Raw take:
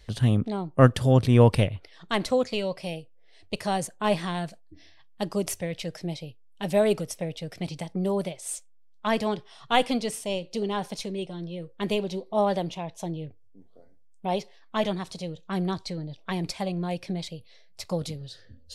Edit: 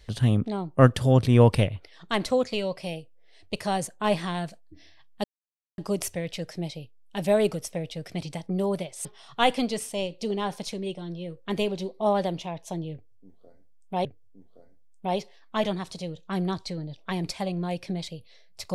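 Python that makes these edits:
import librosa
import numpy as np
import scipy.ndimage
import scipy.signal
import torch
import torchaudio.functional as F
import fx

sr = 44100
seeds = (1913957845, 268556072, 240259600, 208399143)

y = fx.edit(x, sr, fx.insert_silence(at_s=5.24, length_s=0.54),
    fx.cut(start_s=8.51, length_s=0.86),
    fx.repeat(start_s=13.25, length_s=1.12, count=2), tone=tone)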